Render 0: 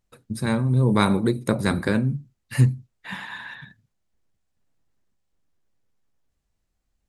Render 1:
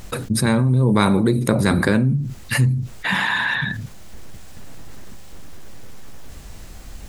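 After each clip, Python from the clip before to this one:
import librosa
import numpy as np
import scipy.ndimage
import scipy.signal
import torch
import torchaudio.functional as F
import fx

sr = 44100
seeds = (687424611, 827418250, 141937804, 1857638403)

y = fx.env_flatten(x, sr, amount_pct=70)
y = y * 10.0 ** (-1.5 / 20.0)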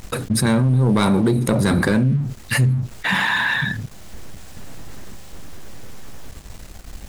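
y = fx.leveller(x, sr, passes=2)
y = y * 10.0 ** (-6.0 / 20.0)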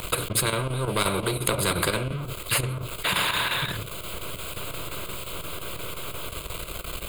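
y = fx.chopper(x, sr, hz=5.7, depth_pct=60, duty_pct=85)
y = fx.fixed_phaser(y, sr, hz=1200.0, stages=8)
y = fx.spectral_comp(y, sr, ratio=2.0)
y = y * 10.0 ** (4.0 / 20.0)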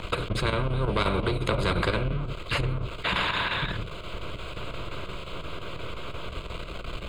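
y = fx.octave_divider(x, sr, octaves=2, level_db=-1.0)
y = fx.air_absorb(y, sr, metres=160.0)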